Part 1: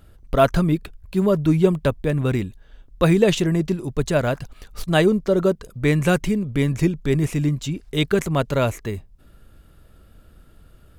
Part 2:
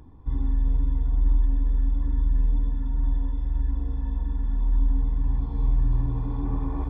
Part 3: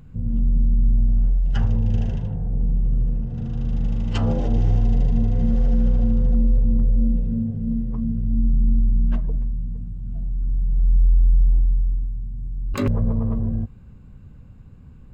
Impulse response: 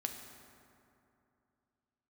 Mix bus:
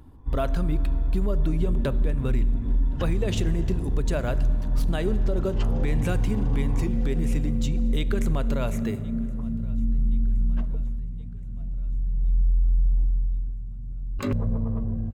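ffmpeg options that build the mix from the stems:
-filter_complex "[0:a]agate=range=0.398:threshold=0.0112:ratio=16:detection=peak,acompressor=threshold=0.0891:ratio=2,volume=0.473,asplit=3[s0][s1][s2];[s1]volume=0.501[s3];[s2]volume=0.0631[s4];[1:a]volume=0.708,asplit=2[s5][s6];[s6]volume=0.398[s7];[2:a]adelay=1450,volume=0.531,asplit=2[s8][s9];[s9]volume=0.112[s10];[3:a]atrim=start_sample=2205[s11];[s3][s7][s10]amix=inputs=3:normalize=0[s12];[s12][s11]afir=irnorm=-1:irlink=0[s13];[s4]aecho=0:1:1071|2142|3213|4284|5355|6426|7497|8568:1|0.54|0.292|0.157|0.085|0.0459|0.0248|0.0134[s14];[s0][s5][s8][s13][s14]amix=inputs=5:normalize=0,alimiter=limit=0.178:level=0:latency=1:release=154"

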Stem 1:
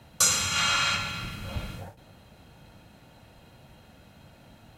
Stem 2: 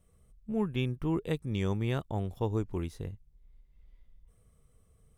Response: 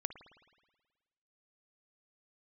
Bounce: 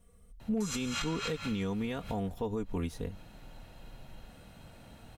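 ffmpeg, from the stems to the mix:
-filter_complex "[0:a]adelay=400,volume=0.891[s0];[1:a]aecho=1:1:4.2:0.72,asoftclip=type=hard:threshold=0.119,volume=1.26,asplit=2[s1][s2];[s2]apad=whole_len=228136[s3];[s0][s3]sidechaincompress=threshold=0.00794:ratio=6:attack=46:release=128[s4];[s4][s1]amix=inputs=2:normalize=0,alimiter=level_in=1.06:limit=0.0631:level=0:latency=1:release=109,volume=0.944"

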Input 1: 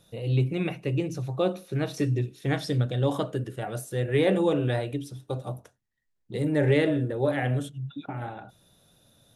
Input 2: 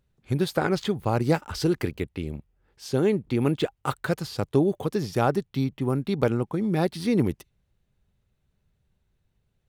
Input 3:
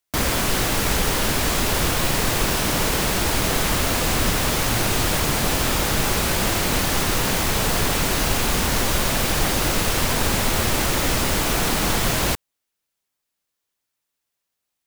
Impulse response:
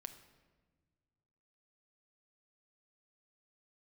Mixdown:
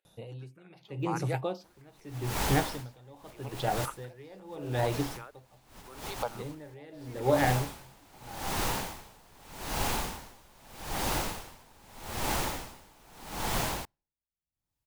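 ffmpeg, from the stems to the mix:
-filter_complex "[0:a]adelay=50,volume=1.06[s0];[1:a]highpass=680,asplit=2[s1][s2];[s2]afreqshift=1.5[s3];[s1][s3]amix=inputs=2:normalize=1,volume=0.562,asplit=3[s4][s5][s6];[s5]volume=0.355[s7];[2:a]adelay=1500,volume=0.316,asplit=2[s8][s9];[s9]volume=0.0891[s10];[s6]apad=whole_len=721754[s11];[s8][s11]sidechaincompress=threshold=0.00282:ratio=12:attack=8.5:release=203[s12];[3:a]atrim=start_sample=2205[s13];[s7][s10]amix=inputs=2:normalize=0[s14];[s14][s13]afir=irnorm=-1:irlink=0[s15];[s0][s4][s12][s15]amix=inputs=4:normalize=0,equalizer=f=860:t=o:w=0.51:g=8,aeval=exprs='val(0)*pow(10,-29*(0.5-0.5*cos(2*PI*0.81*n/s))/20)':c=same"

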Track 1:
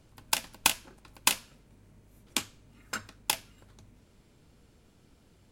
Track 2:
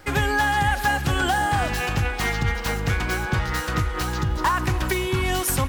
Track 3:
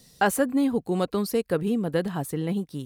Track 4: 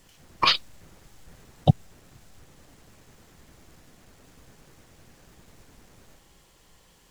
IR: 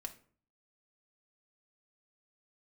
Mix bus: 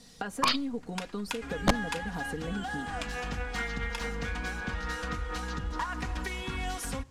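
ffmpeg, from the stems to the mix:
-filter_complex "[0:a]equalizer=f=1500:t=o:w=1.6:g=12.5,adelay=650,volume=0.237[s0];[1:a]adelay=1350,volume=0.316,asplit=2[s1][s2];[s2]volume=0.316[s3];[2:a]acompressor=threshold=0.0224:ratio=5,volume=0.794,asplit=3[s4][s5][s6];[s5]volume=0.282[s7];[3:a]equalizer=f=3200:t=o:w=1:g=-5,aeval=exprs='(mod(3.16*val(0)+1,2)-1)/3.16':c=same,volume=0.531,asplit=2[s8][s9];[s9]volume=0.398[s10];[s6]apad=whole_len=310224[s11];[s1][s11]sidechaincompress=threshold=0.00708:ratio=8:attack=16:release=782[s12];[s0][s12][s4]amix=inputs=3:normalize=0,aecho=1:1:4.2:0.87,acompressor=threshold=0.0224:ratio=3,volume=1[s13];[4:a]atrim=start_sample=2205[s14];[s3][s7][s10]amix=inputs=3:normalize=0[s15];[s15][s14]afir=irnorm=-1:irlink=0[s16];[s8][s13][s16]amix=inputs=3:normalize=0,lowpass=8100"

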